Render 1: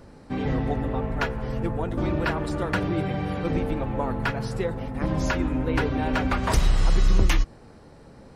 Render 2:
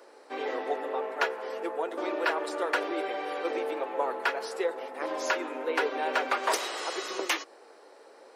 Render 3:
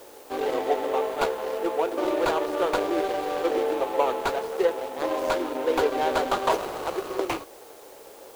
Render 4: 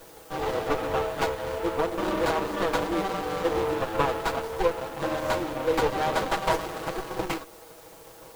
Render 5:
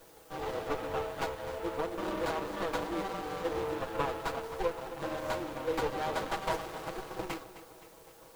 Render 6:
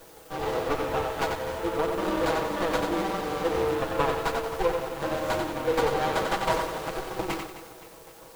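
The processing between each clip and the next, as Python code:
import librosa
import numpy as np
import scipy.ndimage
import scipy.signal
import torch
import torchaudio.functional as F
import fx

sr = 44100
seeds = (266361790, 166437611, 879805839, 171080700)

y1 = scipy.signal.sosfilt(scipy.signal.butter(6, 370.0, 'highpass', fs=sr, output='sos'), x)
y2 = scipy.ndimage.median_filter(y1, 25, mode='constant')
y2 = fx.quant_dither(y2, sr, seeds[0], bits=10, dither='triangular')
y2 = y2 * 10.0 ** (7.5 / 20.0)
y3 = fx.lower_of_two(y2, sr, delay_ms=6.2)
y4 = fx.echo_feedback(y3, sr, ms=260, feedback_pct=53, wet_db=-14.5)
y4 = y4 * 10.0 ** (-8.0 / 20.0)
y5 = fx.echo_crushed(y4, sr, ms=91, feedback_pct=35, bits=9, wet_db=-5)
y5 = y5 * 10.0 ** (6.5 / 20.0)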